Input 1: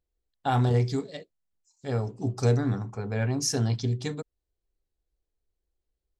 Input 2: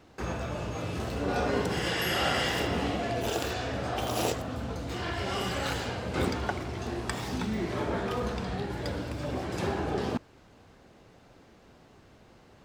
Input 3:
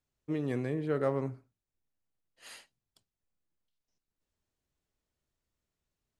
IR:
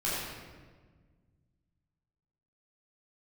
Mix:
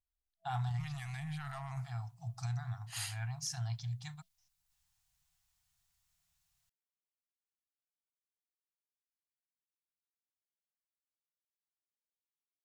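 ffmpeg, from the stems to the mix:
-filter_complex "[0:a]volume=-11dB[a];[2:a]aeval=exprs='0.158*(cos(1*acos(clip(val(0)/0.158,-1,1)))-cos(1*PI/2))+0.00708*(cos(6*acos(clip(val(0)/0.158,-1,1)))-cos(6*PI/2))':c=same,highshelf=f=3.1k:g=11.5,adelay=500,volume=2dB[b];[a][b]amix=inputs=2:normalize=0,alimiter=level_in=3.5dB:limit=-24dB:level=0:latency=1:release=20,volume=-3.5dB,volume=0dB,afftfilt=real='re*(1-between(b*sr/4096,180,660))':imag='im*(1-between(b*sr/4096,180,660))':win_size=4096:overlap=0.75"

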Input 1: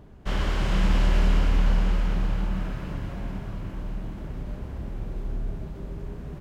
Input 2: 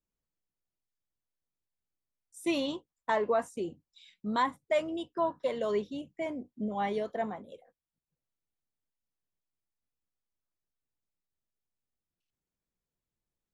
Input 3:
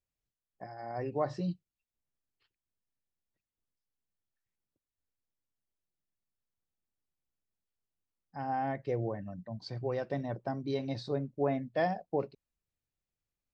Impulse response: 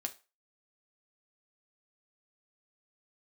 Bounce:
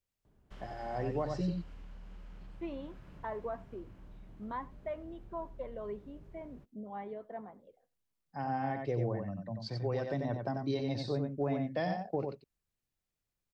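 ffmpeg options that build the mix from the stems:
-filter_complex "[0:a]acompressor=threshold=-27dB:ratio=6,adelay=250,volume=-19dB[a];[1:a]lowpass=1.6k,adelay=150,volume=-10.5dB,asplit=2[b][c];[c]volume=-22dB[d];[2:a]volume=1dB,asplit=2[e][f];[f]volume=-6dB[g];[d][g]amix=inputs=2:normalize=0,aecho=0:1:91:1[h];[a][b][e][h]amix=inputs=4:normalize=0,acrossover=split=240|3000[i][j][k];[j]acompressor=threshold=-32dB:ratio=6[l];[i][l][k]amix=inputs=3:normalize=0"

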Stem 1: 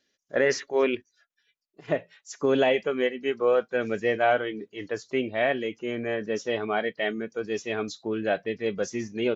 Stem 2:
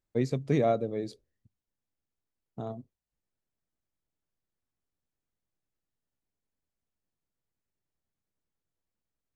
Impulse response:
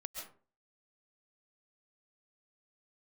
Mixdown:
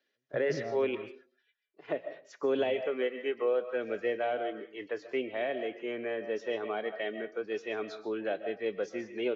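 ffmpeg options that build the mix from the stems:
-filter_complex "[0:a]acrossover=split=310 5100:gain=0.141 1 0.141[a][b][c];[a][b][c]amix=inputs=3:normalize=0,volume=-4.5dB,asplit=3[d][e][f];[e]volume=-4dB[g];[1:a]volume=-13dB[h];[f]apad=whole_len=412512[i];[h][i]sidechaingate=range=-49dB:threshold=-51dB:ratio=16:detection=peak[j];[2:a]atrim=start_sample=2205[k];[g][k]afir=irnorm=-1:irlink=0[l];[d][j][l]amix=inputs=3:normalize=0,highshelf=f=4.8k:g=-11.5,acrossover=split=500|3000[m][n][o];[n]acompressor=threshold=-37dB:ratio=6[p];[m][p][o]amix=inputs=3:normalize=0"

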